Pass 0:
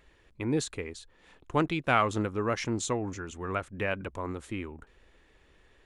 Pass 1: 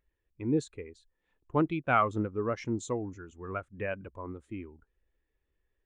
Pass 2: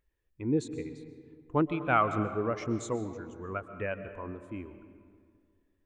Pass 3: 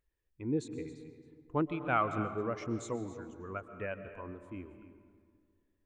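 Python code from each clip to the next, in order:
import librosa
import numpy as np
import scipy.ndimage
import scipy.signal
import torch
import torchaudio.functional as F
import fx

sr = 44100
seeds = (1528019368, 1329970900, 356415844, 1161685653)

y1 = fx.spectral_expand(x, sr, expansion=1.5)
y1 = y1 * librosa.db_to_amplitude(-2.0)
y2 = fx.rev_freeverb(y1, sr, rt60_s=2.1, hf_ratio=0.5, predelay_ms=90, drr_db=10.5)
y3 = y2 + 10.0 ** (-15.0 / 20.0) * np.pad(y2, (int(270 * sr / 1000.0), 0))[:len(y2)]
y3 = y3 * librosa.db_to_amplitude(-4.5)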